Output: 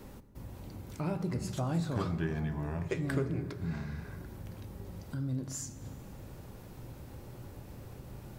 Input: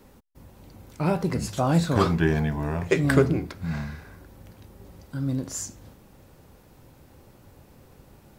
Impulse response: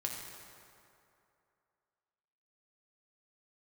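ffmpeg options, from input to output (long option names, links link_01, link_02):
-filter_complex "[0:a]acompressor=threshold=-48dB:ratio=2,asplit=2[link_01][link_02];[1:a]atrim=start_sample=2205,lowshelf=frequency=390:gain=11[link_03];[link_02][link_03]afir=irnorm=-1:irlink=0,volume=-10dB[link_04];[link_01][link_04]amix=inputs=2:normalize=0"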